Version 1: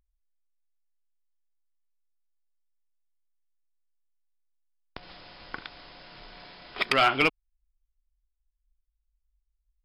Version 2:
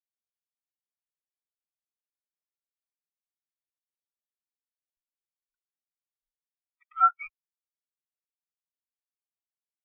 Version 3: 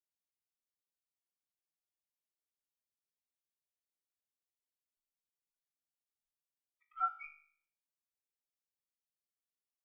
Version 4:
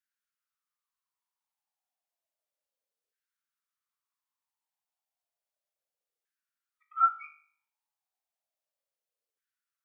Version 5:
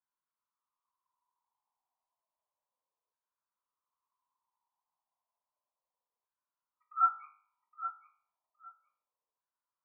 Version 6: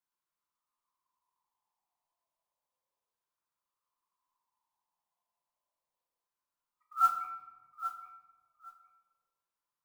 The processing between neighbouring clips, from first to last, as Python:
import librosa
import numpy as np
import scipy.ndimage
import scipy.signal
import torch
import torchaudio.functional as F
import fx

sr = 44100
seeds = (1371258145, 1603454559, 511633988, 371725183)

y1 = fx.halfwave_hold(x, sr)
y1 = scipy.signal.sosfilt(scipy.signal.cheby2(4, 50, [180.0, 450.0], 'bandstop', fs=sr, output='sos'), y1)
y1 = fx.spectral_expand(y1, sr, expansion=4.0)
y1 = y1 * 10.0 ** (-5.0 / 20.0)
y2 = fx.peak_eq(y1, sr, hz=1600.0, db=-8.0, octaves=1.6)
y2 = fx.comb_fb(y2, sr, f0_hz=51.0, decay_s=0.55, harmonics='all', damping=0.0, mix_pct=80)
y2 = y2 * 10.0 ** (3.5 / 20.0)
y3 = fx.filter_lfo_highpass(y2, sr, shape='saw_down', hz=0.32, low_hz=460.0, high_hz=1600.0, q=5.7)
y4 = fx.lowpass_res(y3, sr, hz=1000.0, q=9.5)
y4 = fx.echo_feedback(y4, sr, ms=816, feedback_pct=18, wet_db=-11.5)
y4 = y4 * 10.0 ** (-4.5 / 20.0)
y5 = fx.mod_noise(y4, sr, seeds[0], snr_db=24)
y5 = fx.room_shoebox(y5, sr, seeds[1], volume_m3=730.0, walls='mixed', distance_m=0.84)